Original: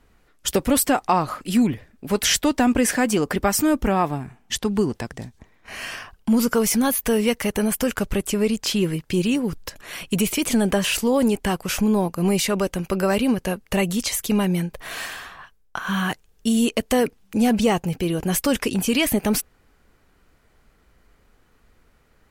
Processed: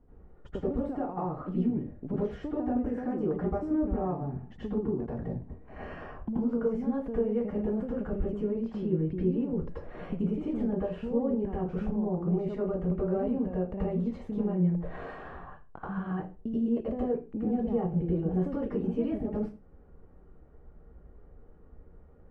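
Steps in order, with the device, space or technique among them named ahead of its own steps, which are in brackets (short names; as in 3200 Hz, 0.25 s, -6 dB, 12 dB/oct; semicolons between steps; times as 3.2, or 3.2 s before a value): television next door (compressor 6:1, threshold -31 dBFS, peak gain reduction 16 dB; LPF 560 Hz 12 dB/oct; reverb RT60 0.30 s, pre-delay 78 ms, DRR -9 dB); gain -2.5 dB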